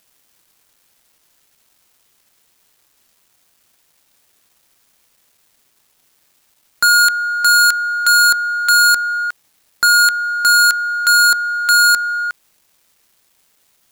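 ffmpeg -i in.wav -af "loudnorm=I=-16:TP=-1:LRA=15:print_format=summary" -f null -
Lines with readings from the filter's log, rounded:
Input Integrated:    -12.4 LUFS
Input True Peak:      -5.1 dBTP
Input LRA:             3.0 LU
Input Threshold:     -26.0 LUFS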